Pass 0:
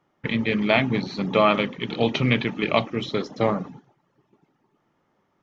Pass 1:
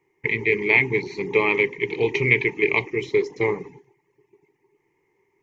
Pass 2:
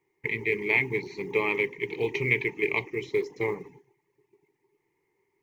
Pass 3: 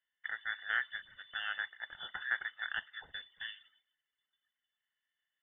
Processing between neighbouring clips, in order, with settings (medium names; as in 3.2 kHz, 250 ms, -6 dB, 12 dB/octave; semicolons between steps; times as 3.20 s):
FFT filter 140 Hz 0 dB, 230 Hz -11 dB, 410 Hz +14 dB, 610 Hz -17 dB, 940 Hz +5 dB, 1.4 kHz -18 dB, 2.1 kHz +15 dB, 3.4 kHz -8 dB, 7 kHz +6 dB; trim -3 dB
companded quantiser 8-bit; trim -6.5 dB
Bessel high-pass 830 Hz, order 4; frequency inversion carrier 3.9 kHz; trim -8.5 dB